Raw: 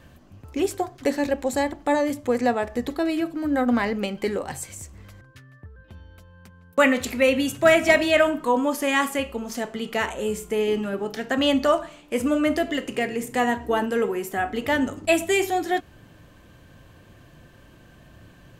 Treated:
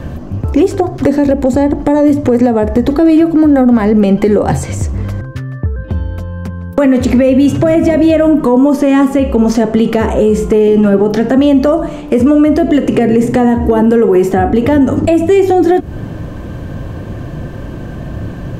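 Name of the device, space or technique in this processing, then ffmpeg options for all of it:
mastering chain: -filter_complex "[0:a]equalizer=frequency=5700:width_type=o:width=0.77:gain=3,acrossover=split=470|7800[link_01][link_02][link_03];[link_01]acompressor=threshold=-28dB:ratio=4[link_04];[link_02]acompressor=threshold=-33dB:ratio=4[link_05];[link_03]acompressor=threshold=-51dB:ratio=4[link_06];[link_04][link_05][link_06]amix=inputs=3:normalize=0,acompressor=threshold=-31dB:ratio=2,asoftclip=type=tanh:threshold=-19.5dB,tiltshelf=frequency=1300:gain=8.5,asoftclip=type=hard:threshold=-17dB,alimiter=level_in=20.5dB:limit=-1dB:release=50:level=0:latency=1,volume=-1dB"

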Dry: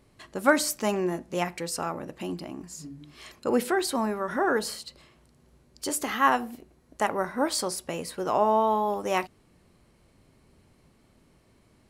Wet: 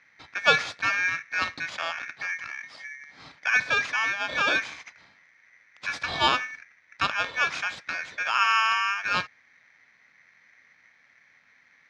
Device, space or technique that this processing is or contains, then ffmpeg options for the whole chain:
ring modulator pedal into a guitar cabinet: -af "aeval=exprs='val(0)*sgn(sin(2*PI*2000*n/s))':channel_layout=same,highpass=97,equalizer=frequency=210:width_type=q:width=4:gain=-3,equalizer=frequency=380:width_type=q:width=4:gain=-8,equalizer=frequency=890:width_type=q:width=4:gain=-3,equalizer=frequency=2900:width_type=q:width=4:gain=-9,lowpass=frequency=4200:width=0.5412,lowpass=frequency=4200:width=1.3066,volume=3.5dB"

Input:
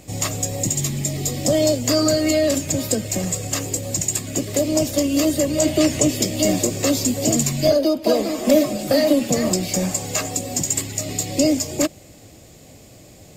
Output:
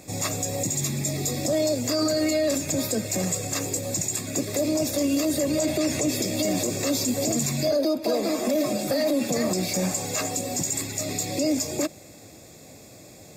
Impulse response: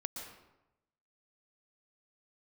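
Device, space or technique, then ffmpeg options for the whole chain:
PA system with an anti-feedback notch: -af "highpass=frequency=160:poles=1,asuperstop=centerf=3000:order=8:qfactor=6.7,alimiter=limit=-15.5dB:level=0:latency=1:release=39"

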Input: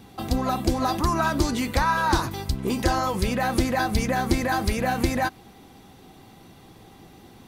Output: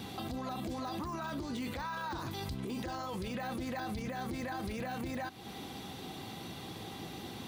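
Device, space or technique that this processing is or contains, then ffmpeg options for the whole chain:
broadcast voice chain: -af "highpass=79,deesser=0.85,acompressor=threshold=-37dB:ratio=3,equalizer=frequency=3600:width_type=o:width=0.96:gain=6,alimiter=level_in=11dB:limit=-24dB:level=0:latency=1:release=29,volume=-11dB,volume=4dB"

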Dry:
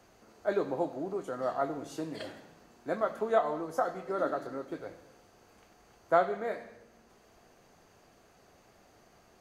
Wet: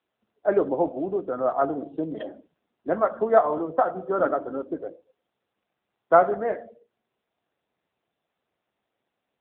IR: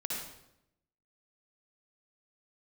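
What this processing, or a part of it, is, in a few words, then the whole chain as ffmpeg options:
mobile call with aggressive noise cancelling: -af "highpass=130,afftdn=noise_reduction=27:noise_floor=-41,volume=9dB" -ar 8000 -c:a libopencore_amrnb -b:a 7950

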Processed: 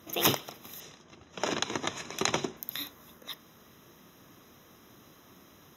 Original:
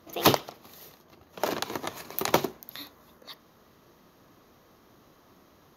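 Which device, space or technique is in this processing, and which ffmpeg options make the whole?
PA system with an anti-feedback notch: -filter_complex "[0:a]asettb=1/sr,asplit=3[link_01][link_02][link_03];[link_01]atrim=end=0.804[link_04];[link_02]atrim=start=0.8:end=2.57,asetpts=PTS-STARTPTS,afade=type=in:duration=0.004:curve=qsin,afade=type=out:start_time=1.766:duration=0.004:curve=qsin,lowpass=frequency=7400:width=0.5412,lowpass=frequency=7400:width=1.3066[link_05];[link_03]atrim=start=2.566[link_06];[link_04][link_05]acrossfade=duration=0.004:curve1=hsin:curve2=qsin[link_07];[link_07][link_06]acrossfade=duration=0.004:curve1=qsin:curve2=hsin,highpass=frequency=130:poles=1,asuperstop=centerf=4500:order=20:qfactor=5.5,alimiter=limit=-14.5dB:level=0:latency=1:release=213,equalizer=frequency=680:width=0.48:gain=-8,volume=7dB"

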